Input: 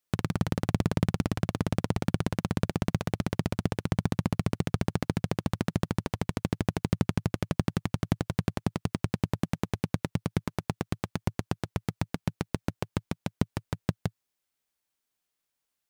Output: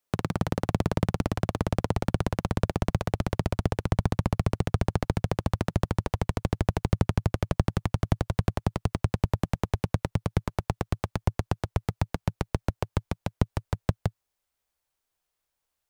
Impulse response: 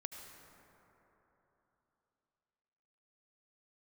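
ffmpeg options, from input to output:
-filter_complex "[0:a]asubboost=boost=4:cutoff=97,acrossover=split=420|1100[a][b][c];[b]acontrast=67[d];[a][d][c]amix=inputs=3:normalize=0"

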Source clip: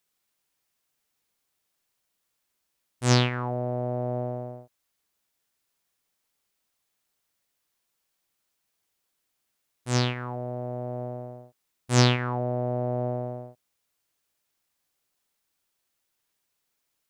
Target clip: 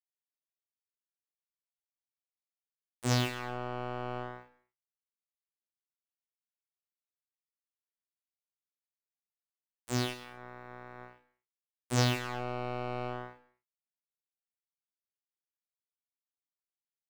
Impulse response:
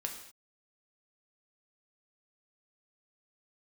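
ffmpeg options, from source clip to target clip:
-filter_complex "[0:a]aeval=exprs='val(0)+0.00251*(sin(2*PI*60*n/s)+sin(2*PI*2*60*n/s)/2+sin(2*PI*3*60*n/s)/3+sin(2*PI*4*60*n/s)/4+sin(2*PI*5*60*n/s)/5)':c=same,acrusher=bits=3:mix=0:aa=0.5,asplit=2[a][b];[1:a]atrim=start_sample=2205,highshelf=f=7.8k:g=6,adelay=27[c];[b][c]afir=irnorm=-1:irlink=0,volume=-9.5dB[d];[a][d]amix=inputs=2:normalize=0,volume=-8dB"

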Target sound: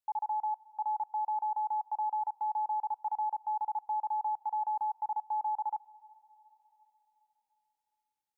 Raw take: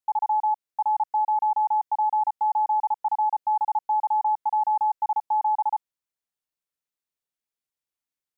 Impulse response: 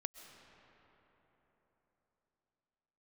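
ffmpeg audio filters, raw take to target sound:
-filter_complex "[0:a]acompressor=threshold=-24dB:ratio=6,alimiter=level_in=0.5dB:limit=-24dB:level=0:latency=1:release=29,volume=-0.5dB,asplit=2[a][b];[1:a]atrim=start_sample=2205[c];[b][c]afir=irnorm=-1:irlink=0,volume=-9.5dB[d];[a][d]amix=inputs=2:normalize=0,volume=-5.5dB"

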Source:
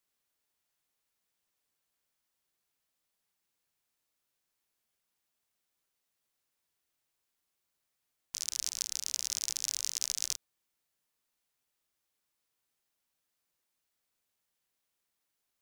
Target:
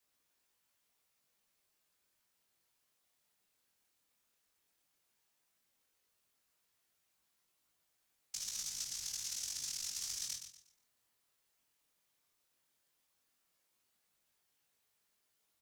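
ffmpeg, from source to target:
-filter_complex "[0:a]afftfilt=real='hypot(re,im)*cos(2*PI*random(0))':imag='hypot(re,im)*sin(2*PI*random(1))':win_size=512:overlap=0.75,acrossover=split=220[a][b];[b]acompressor=threshold=-52dB:ratio=2.5[c];[a][c]amix=inputs=2:normalize=0,aecho=1:1:120|240|360|480:0.398|0.119|0.0358|0.0107,flanger=delay=18.5:depth=7.2:speed=0.13,volume=12dB"

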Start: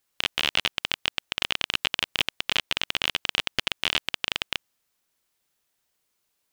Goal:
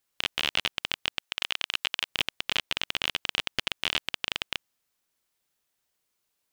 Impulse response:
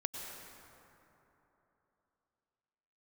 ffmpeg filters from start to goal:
-filter_complex "[0:a]asettb=1/sr,asplit=3[a][b][c];[a]atrim=end=1.204[d];[b]atrim=start=1.2:end=2.09,asetpts=PTS-STARTPTS,afade=t=in:d=0.004:c=qsin,afade=t=out:st=0.886:d=0.004:c=qsin,lowshelf=f=440:g=-10.5[e];[c]atrim=start=2.086[f];[d][e]acrossfade=d=0.004:c1=hsin:c2=qsin[g];[g][f]acrossfade=d=0.004:c1=qsin:c2=hsin,volume=-3dB"

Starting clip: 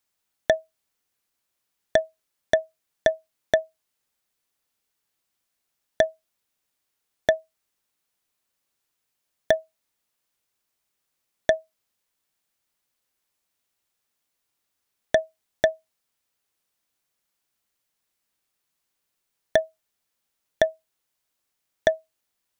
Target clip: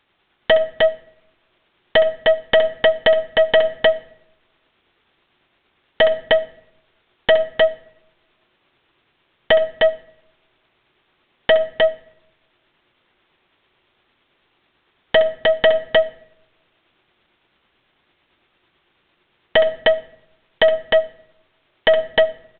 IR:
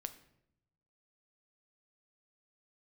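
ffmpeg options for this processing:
-filter_complex "[0:a]equalizer=f=360:w=7.9:g=9.5,aeval=exprs='0.141*(abs(mod(val(0)/0.141+3,4)-2)-1)':c=same,aeval=exprs='(tanh(20*val(0)+0.15)-tanh(0.15))/20':c=same,tremolo=f=9:d=0.31,aecho=1:1:66|307:0.237|0.562,asplit=2[a][b];[1:a]atrim=start_sample=2205[c];[b][c]afir=irnorm=-1:irlink=0,volume=2dB[d];[a][d]amix=inputs=2:normalize=0,alimiter=level_in=23.5dB:limit=-1dB:release=50:level=0:latency=1,volume=-6dB" -ar 8000 -c:a adpcm_g726 -b:a 40k

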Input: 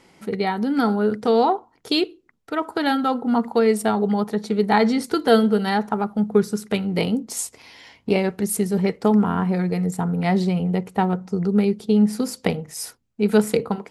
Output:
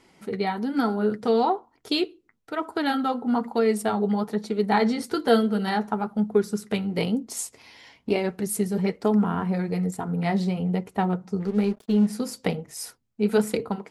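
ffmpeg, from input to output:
-filter_complex "[0:a]asplit=3[a][b][c];[a]afade=t=out:st=11.39:d=0.02[d];[b]aeval=exprs='sgn(val(0))*max(abs(val(0))-0.0126,0)':c=same,afade=t=in:st=11.39:d=0.02,afade=t=out:st=12.06:d=0.02[e];[c]afade=t=in:st=12.06:d=0.02[f];[d][e][f]amix=inputs=3:normalize=0,flanger=delay=2.8:depth=6.7:regen=-46:speed=1.1:shape=sinusoidal"

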